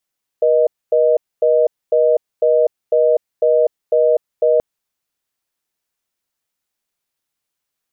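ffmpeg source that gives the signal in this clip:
ffmpeg -f lavfi -i "aevalsrc='0.224*(sin(2*PI*480*t)+sin(2*PI*620*t))*clip(min(mod(t,0.5),0.25-mod(t,0.5))/0.005,0,1)':duration=4.18:sample_rate=44100" out.wav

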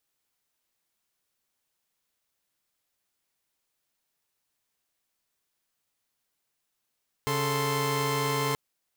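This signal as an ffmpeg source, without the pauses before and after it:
ffmpeg -f lavfi -i "aevalsrc='0.0422*((2*mod(138.59*t,1)-1)+(2*mod(440*t,1)-1)+(2*mod(1046.5*t,1)-1))':duration=1.28:sample_rate=44100" out.wav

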